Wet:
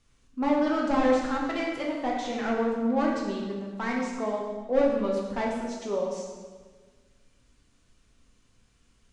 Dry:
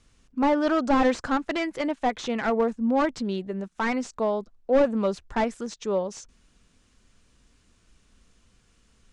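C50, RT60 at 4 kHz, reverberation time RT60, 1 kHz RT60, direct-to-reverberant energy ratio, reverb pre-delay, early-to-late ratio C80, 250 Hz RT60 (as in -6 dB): 2.0 dB, 1.2 s, 1.5 s, 1.4 s, -2.0 dB, 7 ms, 4.0 dB, 1.6 s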